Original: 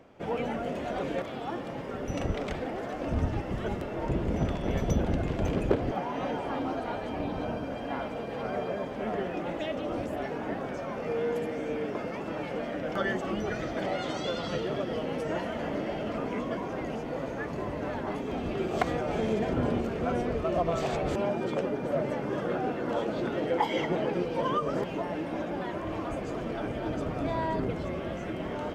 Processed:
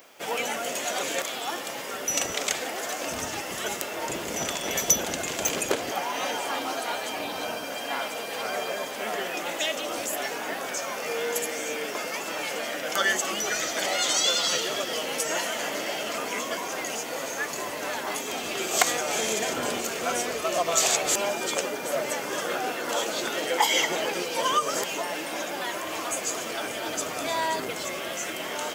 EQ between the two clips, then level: RIAA curve recording; tilt +2.5 dB/oct; dynamic EQ 6900 Hz, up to +7 dB, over -53 dBFS, Q 2.7; +5.0 dB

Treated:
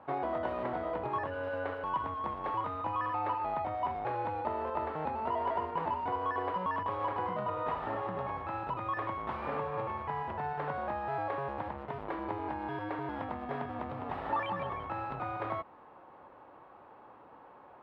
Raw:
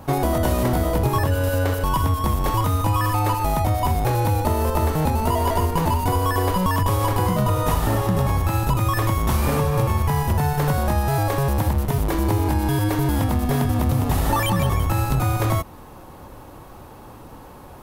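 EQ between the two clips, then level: band-pass 590 Hz, Q 0.67; air absorption 460 m; tilt shelf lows -9 dB, about 810 Hz; -6.5 dB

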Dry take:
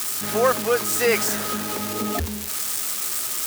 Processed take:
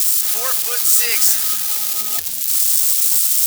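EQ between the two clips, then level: pre-emphasis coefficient 0.97; bell 850 Hz +4 dB 0.31 oct; bell 3900 Hz +4.5 dB 1.8 oct; +7.5 dB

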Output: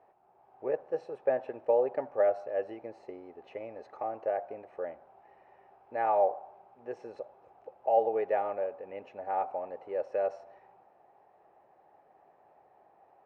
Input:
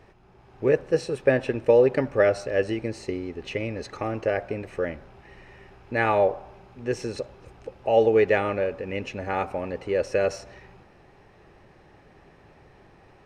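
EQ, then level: band-pass 740 Hz, Q 3.4; 0.0 dB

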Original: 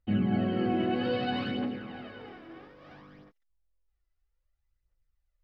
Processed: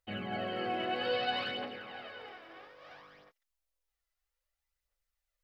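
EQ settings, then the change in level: tilt shelf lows -4 dB, about 1300 Hz; resonant low shelf 380 Hz -9.5 dB, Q 1.5; 0.0 dB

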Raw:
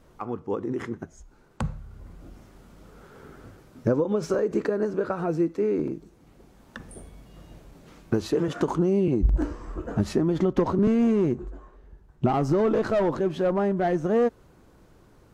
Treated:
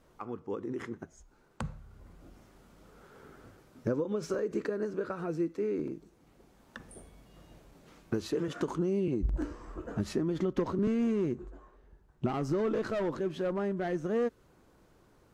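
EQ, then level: dynamic EQ 770 Hz, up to -7 dB, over -40 dBFS, Q 1.6; low shelf 230 Hz -5 dB; -5.0 dB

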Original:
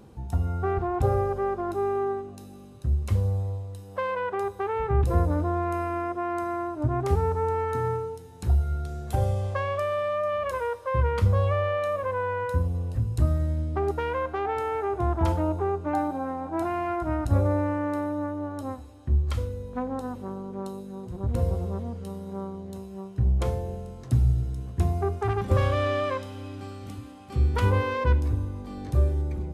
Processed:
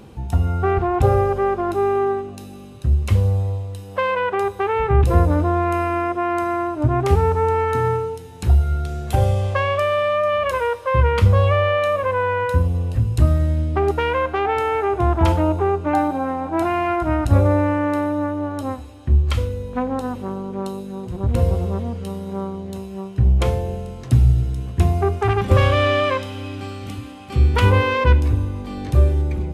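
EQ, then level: bell 2700 Hz +6.5 dB 0.96 oct; +7.5 dB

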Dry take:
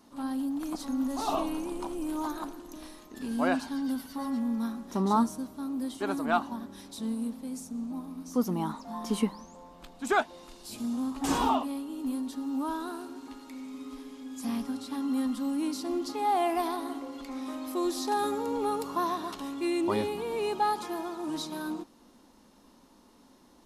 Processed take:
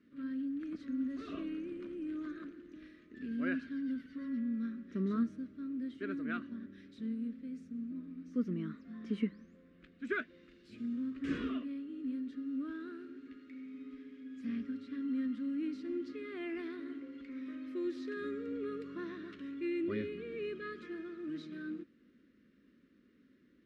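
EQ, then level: HPF 70 Hz; Butterworth band-stop 850 Hz, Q 0.62; synth low-pass 1800 Hz, resonance Q 1.7; -5.5 dB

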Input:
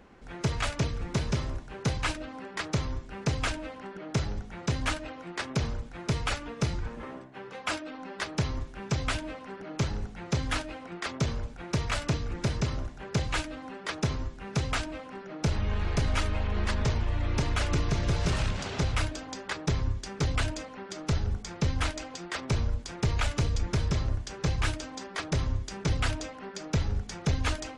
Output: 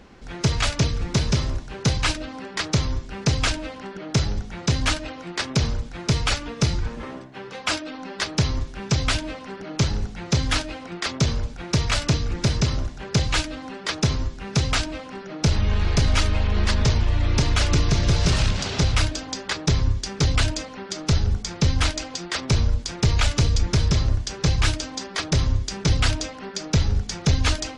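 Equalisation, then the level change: low shelf 290 Hz +4.5 dB; bell 4900 Hz +8.5 dB 1.6 oct; +4.0 dB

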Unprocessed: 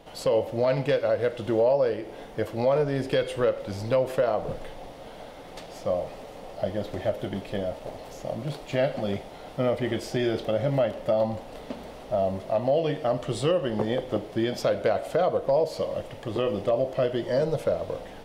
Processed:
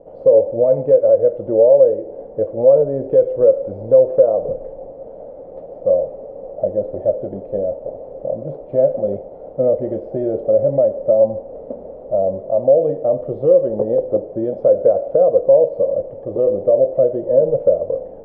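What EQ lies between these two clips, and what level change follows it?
synth low-pass 540 Hz, resonance Q 4.9; 0.0 dB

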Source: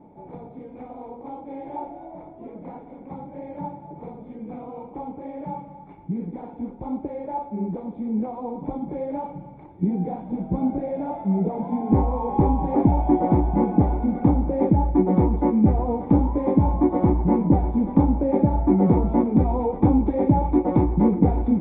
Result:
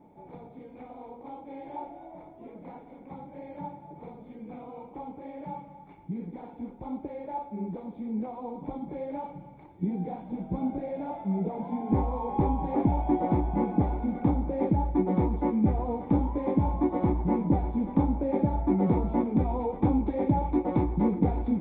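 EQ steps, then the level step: high shelf 2200 Hz +11.5 dB; -7.0 dB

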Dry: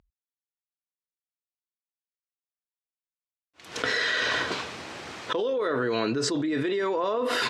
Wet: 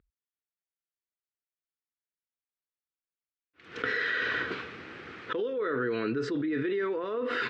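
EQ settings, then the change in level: LPF 2000 Hz 12 dB/oct; low shelf 400 Hz -4.5 dB; band shelf 780 Hz -11.5 dB 1.1 oct; 0.0 dB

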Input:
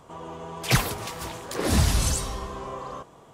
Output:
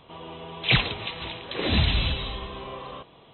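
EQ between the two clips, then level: brick-wall FIR low-pass 4100 Hz; resonant high shelf 2000 Hz +8 dB, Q 1.5; -1.5 dB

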